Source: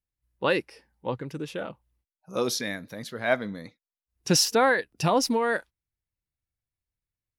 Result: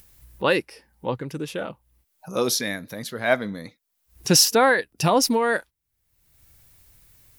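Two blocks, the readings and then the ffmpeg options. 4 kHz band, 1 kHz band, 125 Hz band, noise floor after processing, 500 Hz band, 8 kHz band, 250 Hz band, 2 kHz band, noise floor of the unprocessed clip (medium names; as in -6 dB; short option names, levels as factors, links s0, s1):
+5.5 dB, +3.5 dB, +3.5 dB, -75 dBFS, +3.5 dB, +6.5 dB, +3.5 dB, +4.0 dB, under -85 dBFS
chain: -af "highshelf=f=9700:g=10.5,acompressor=mode=upward:threshold=0.0178:ratio=2.5,volume=1.5"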